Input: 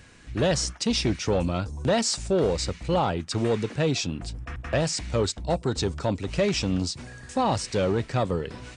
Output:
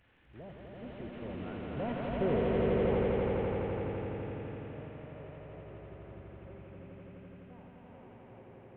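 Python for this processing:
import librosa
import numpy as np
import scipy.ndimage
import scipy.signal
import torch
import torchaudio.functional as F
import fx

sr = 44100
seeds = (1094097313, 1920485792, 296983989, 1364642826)

y = fx.delta_mod(x, sr, bps=16000, step_db=-35.5)
y = fx.doppler_pass(y, sr, speed_mps=16, closest_m=4.6, pass_at_s=2.23)
y = fx.echo_swell(y, sr, ms=84, loudest=5, wet_db=-3)
y = y * librosa.db_to_amplitude(-7.5)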